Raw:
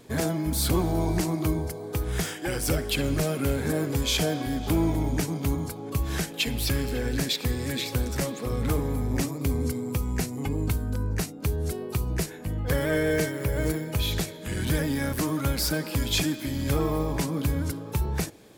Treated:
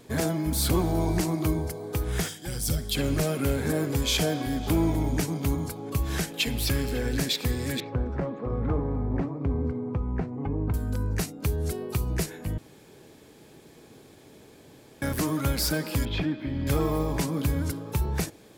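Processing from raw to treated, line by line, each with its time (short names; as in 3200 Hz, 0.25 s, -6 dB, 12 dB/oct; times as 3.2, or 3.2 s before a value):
2.28–2.96 spectral gain 250–3100 Hz -10 dB
7.8–10.74 Chebyshev low-pass 1100 Hz
12.58–15.02 room tone
16.05–16.67 air absorption 380 m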